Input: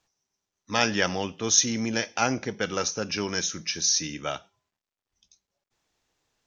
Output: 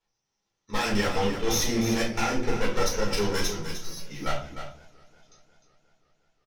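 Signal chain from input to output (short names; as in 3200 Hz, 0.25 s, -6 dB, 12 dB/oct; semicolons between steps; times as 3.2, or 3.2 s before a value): LPF 5800 Hz; level quantiser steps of 15 dB; one-sided clip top -42 dBFS, bottom -25 dBFS; 3.64–4.1 resonator 560 Hz, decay 0.2 s, harmonics all, mix 90%; on a send: echo 0.304 s -9.5 dB; on the sum: shoebox room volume 170 m³, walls furnished, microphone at 4.3 m; warbling echo 0.179 s, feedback 77%, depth 207 cents, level -24 dB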